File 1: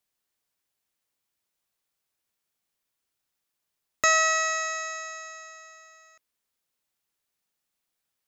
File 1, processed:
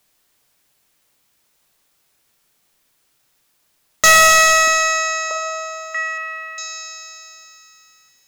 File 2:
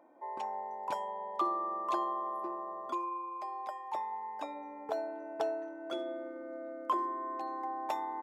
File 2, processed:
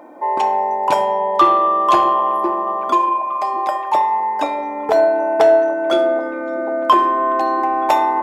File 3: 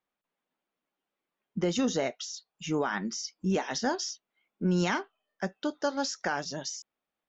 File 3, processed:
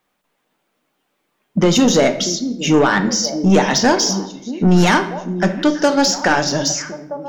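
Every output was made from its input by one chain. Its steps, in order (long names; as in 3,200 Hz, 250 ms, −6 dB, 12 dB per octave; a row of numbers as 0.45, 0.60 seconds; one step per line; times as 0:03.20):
echo through a band-pass that steps 636 ms, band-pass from 260 Hz, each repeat 1.4 octaves, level −11 dB
soft clipping −25 dBFS
rectangular room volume 260 cubic metres, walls mixed, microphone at 0.42 metres
normalise the peak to −3 dBFS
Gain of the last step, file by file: +18.0, +20.5, +17.5 decibels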